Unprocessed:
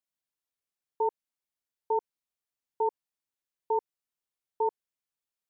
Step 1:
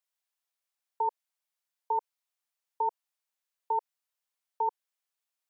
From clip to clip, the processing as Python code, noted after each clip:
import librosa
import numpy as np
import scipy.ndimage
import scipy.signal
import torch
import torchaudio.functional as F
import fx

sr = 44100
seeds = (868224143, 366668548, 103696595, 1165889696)

y = fx.level_steps(x, sr, step_db=16)
y = scipy.signal.sosfilt(scipy.signal.butter(4, 580.0, 'highpass', fs=sr, output='sos'), y)
y = F.gain(torch.from_numpy(y), 7.5).numpy()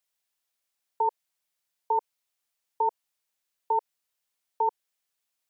y = fx.peak_eq(x, sr, hz=1100.0, db=-3.0, octaves=1.5)
y = F.gain(torch.from_numpy(y), 6.0).numpy()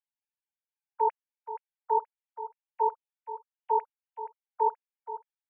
y = fx.sine_speech(x, sr)
y = fx.echo_feedback(y, sr, ms=476, feedback_pct=32, wet_db=-12.5)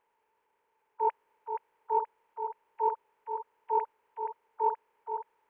y = fx.bin_compress(x, sr, power=0.6)
y = fx.transient(y, sr, attack_db=-7, sustain_db=3)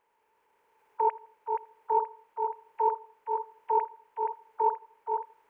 y = fx.recorder_agc(x, sr, target_db=-22.0, rise_db_per_s=7.8, max_gain_db=30)
y = fx.echo_feedback(y, sr, ms=82, feedback_pct=39, wet_db=-20.5)
y = F.gain(torch.from_numpy(y), 2.0).numpy()